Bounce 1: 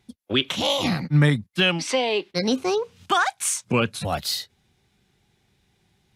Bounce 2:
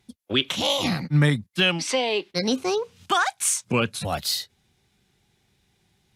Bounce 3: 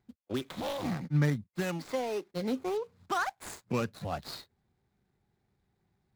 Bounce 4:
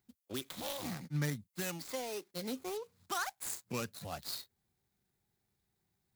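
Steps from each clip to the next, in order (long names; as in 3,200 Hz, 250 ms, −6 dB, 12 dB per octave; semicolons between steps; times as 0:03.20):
parametric band 11,000 Hz +3.5 dB 2.5 octaves; level −1.5 dB
running median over 15 samples; level −7.5 dB
first-order pre-emphasis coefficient 0.8; level +5.5 dB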